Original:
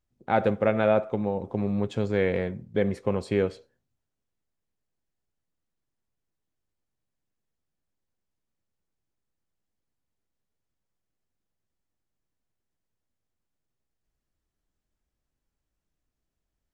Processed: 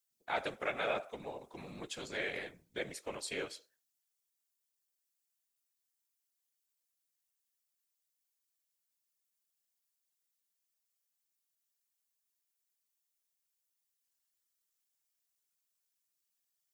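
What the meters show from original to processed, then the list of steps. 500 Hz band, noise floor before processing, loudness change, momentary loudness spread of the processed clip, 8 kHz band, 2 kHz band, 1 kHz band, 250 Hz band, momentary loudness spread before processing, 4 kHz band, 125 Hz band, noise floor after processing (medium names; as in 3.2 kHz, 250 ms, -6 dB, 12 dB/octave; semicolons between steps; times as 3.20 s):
-15.5 dB, -83 dBFS, -13.5 dB, 11 LU, no reading, -4.5 dB, -11.0 dB, -21.0 dB, 6 LU, +0.5 dB, -24.0 dB, -85 dBFS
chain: differentiator; whisper effect; trim +7 dB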